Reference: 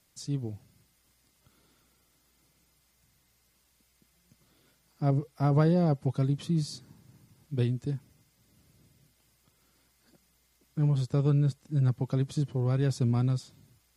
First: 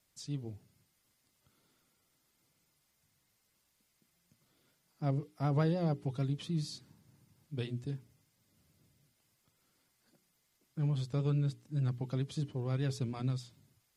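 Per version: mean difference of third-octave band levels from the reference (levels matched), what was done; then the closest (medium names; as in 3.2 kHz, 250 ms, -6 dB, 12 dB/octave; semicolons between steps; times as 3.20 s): 2.0 dB: hum notches 60/120/180/240/300/360/420 Hz; dynamic bell 3 kHz, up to +6 dB, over -57 dBFS, Q 1.1; vibrato 6.8 Hz 39 cents; trim -6.5 dB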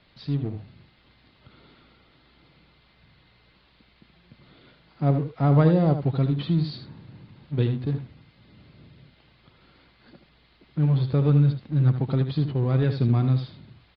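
4.5 dB: companding laws mixed up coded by mu; steep low-pass 4.4 kHz 72 dB/octave; delay 77 ms -9 dB; trim +4 dB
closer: first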